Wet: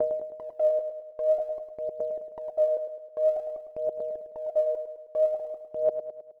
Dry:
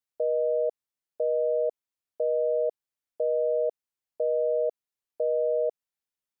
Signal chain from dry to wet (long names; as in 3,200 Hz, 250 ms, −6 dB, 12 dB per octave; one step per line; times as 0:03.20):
slices reordered back to front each 198 ms, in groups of 2
noise gate with hold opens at −30 dBFS
parametric band 480 Hz −12.5 dB 0.29 octaves
brickwall limiter −27 dBFS, peak gain reduction 4.5 dB
phase shifter 0.51 Hz, delay 2.4 ms, feedback 78%
repeating echo 105 ms, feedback 52%, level −9 dB